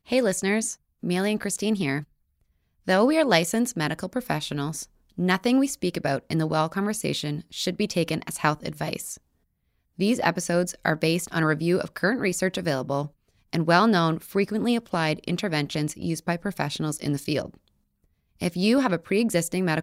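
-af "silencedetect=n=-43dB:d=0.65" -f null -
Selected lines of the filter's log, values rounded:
silence_start: 2.04
silence_end: 2.87 | silence_duration: 0.83
silence_start: 9.17
silence_end: 9.99 | silence_duration: 0.81
silence_start: 17.57
silence_end: 18.40 | silence_duration: 0.84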